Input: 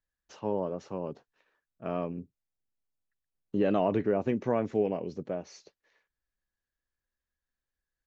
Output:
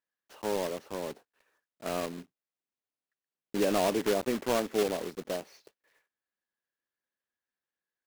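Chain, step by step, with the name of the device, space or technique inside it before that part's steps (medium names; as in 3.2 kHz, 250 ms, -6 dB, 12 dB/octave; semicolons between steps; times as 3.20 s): early digital voice recorder (band-pass 240–3700 Hz; block-companded coder 3-bit)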